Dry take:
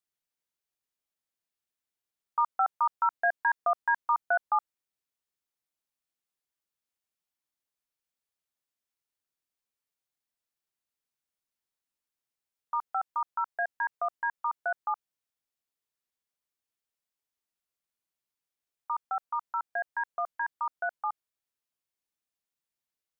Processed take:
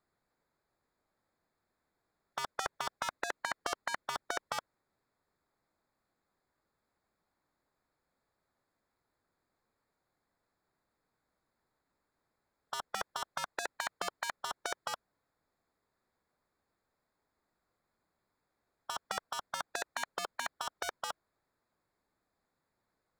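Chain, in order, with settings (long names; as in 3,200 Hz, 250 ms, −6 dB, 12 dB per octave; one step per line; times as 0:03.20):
adaptive Wiener filter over 15 samples
every bin compressed towards the loudest bin 4 to 1
level +1 dB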